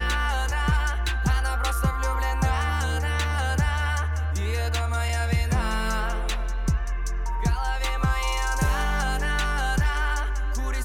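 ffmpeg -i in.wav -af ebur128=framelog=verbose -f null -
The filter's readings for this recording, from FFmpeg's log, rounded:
Integrated loudness:
  I:         -25.9 LUFS
  Threshold: -35.9 LUFS
Loudness range:
  LRA:         1.7 LU
  Threshold: -46.0 LUFS
  LRA low:   -26.9 LUFS
  LRA high:  -25.2 LUFS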